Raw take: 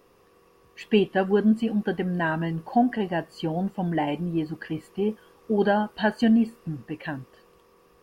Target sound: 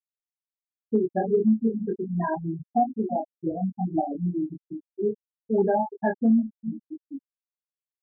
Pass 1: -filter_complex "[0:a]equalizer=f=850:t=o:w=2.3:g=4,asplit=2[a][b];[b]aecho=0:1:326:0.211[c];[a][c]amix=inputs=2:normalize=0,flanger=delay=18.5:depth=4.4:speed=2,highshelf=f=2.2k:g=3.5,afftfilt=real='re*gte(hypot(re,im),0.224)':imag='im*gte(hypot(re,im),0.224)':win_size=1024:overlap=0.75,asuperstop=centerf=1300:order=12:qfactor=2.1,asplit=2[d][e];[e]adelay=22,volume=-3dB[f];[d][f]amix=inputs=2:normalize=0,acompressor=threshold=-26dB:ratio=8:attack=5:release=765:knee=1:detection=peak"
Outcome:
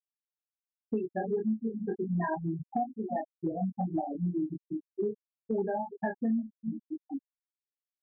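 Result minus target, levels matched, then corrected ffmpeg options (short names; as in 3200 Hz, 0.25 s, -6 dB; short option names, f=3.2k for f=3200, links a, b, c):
compressor: peak gain reduction +10 dB; 2000 Hz band +3.5 dB
-filter_complex "[0:a]equalizer=f=850:t=o:w=2.3:g=4,asplit=2[a][b];[b]aecho=0:1:326:0.211[c];[a][c]amix=inputs=2:normalize=0,flanger=delay=18.5:depth=4.4:speed=2,highshelf=f=2.2k:g=-2.5,afftfilt=real='re*gte(hypot(re,im),0.224)':imag='im*gte(hypot(re,im),0.224)':win_size=1024:overlap=0.75,asuperstop=centerf=1300:order=12:qfactor=2.1,asplit=2[d][e];[e]adelay=22,volume=-3dB[f];[d][f]amix=inputs=2:normalize=0,acompressor=threshold=-15dB:ratio=8:attack=5:release=765:knee=1:detection=peak"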